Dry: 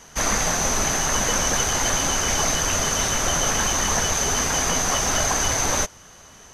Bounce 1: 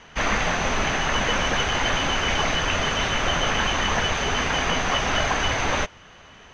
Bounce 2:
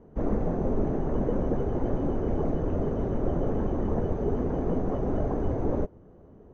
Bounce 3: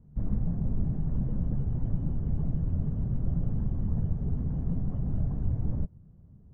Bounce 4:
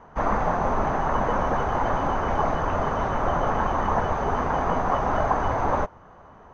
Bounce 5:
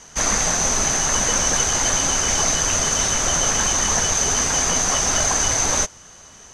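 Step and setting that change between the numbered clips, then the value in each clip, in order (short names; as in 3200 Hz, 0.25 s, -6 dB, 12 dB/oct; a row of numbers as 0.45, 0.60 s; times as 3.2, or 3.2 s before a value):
synth low-pass, frequency: 2800, 390, 150, 1000, 7900 Hz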